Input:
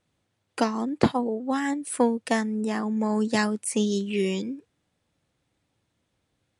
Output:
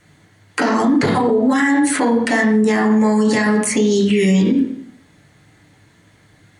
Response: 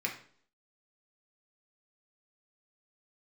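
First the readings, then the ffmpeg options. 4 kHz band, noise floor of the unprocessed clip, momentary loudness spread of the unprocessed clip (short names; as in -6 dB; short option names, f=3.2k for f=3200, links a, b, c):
+8.0 dB, -76 dBFS, 4 LU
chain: -filter_complex "[0:a]bandreject=f=60:t=h:w=6,bandreject=f=120:t=h:w=6,bandreject=f=180:t=h:w=6,bandreject=f=240:t=h:w=6,acrossover=split=2200|7300[a][b][c];[a]acompressor=threshold=-28dB:ratio=4[d];[b]acompressor=threshold=-43dB:ratio=4[e];[c]acompressor=threshold=-53dB:ratio=4[f];[d][e][f]amix=inputs=3:normalize=0[g];[1:a]atrim=start_sample=2205,asetrate=37485,aresample=44100[h];[g][h]afir=irnorm=-1:irlink=0,alimiter=level_in=26dB:limit=-1dB:release=50:level=0:latency=1,volume=-7dB"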